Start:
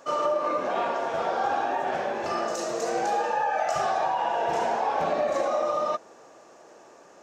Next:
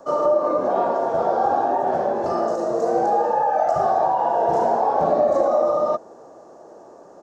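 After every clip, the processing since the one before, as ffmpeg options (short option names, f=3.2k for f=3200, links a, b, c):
-filter_complex "[0:a]firequalizer=gain_entry='entry(680,0);entry(2400,-22);entry(4400,-12)':delay=0.05:min_phase=1,acrossover=split=360|450|2800[a][b][c][d];[d]alimiter=level_in=20.5dB:limit=-24dB:level=0:latency=1:release=465,volume=-20.5dB[e];[a][b][c][e]amix=inputs=4:normalize=0,volume=8dB"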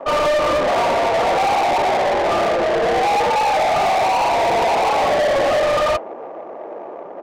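-filter_complex "[0:a]flanger=delay=2.8:depth=3.6:regen=-74:speed=1.8:shape=triangular,adynamicsmooth=sensitivity=6.5:basefreq=880,asplit=2[a][b];[b]highpass=f=720:p=1,volume=28dB,asoftclip=type=tanh:threshold=-11dB[c];[a][c]amix=inputs=2:normalize=0,lowpass=f=4.4k:p=1,volume=-6dB"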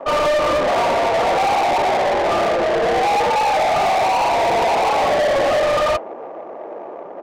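-af anull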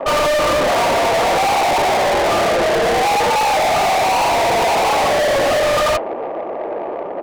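-filter_complex "[0:a]asplit=2[a][b];[b]adynamicsmooth=sensitivity=4.5:basefreq=1.3k,volume=0dB[c];[a][c]amix=inputs=2:normalize=0,asoftclip=type=tanh:threshold=-17.5dB,volume=3dB"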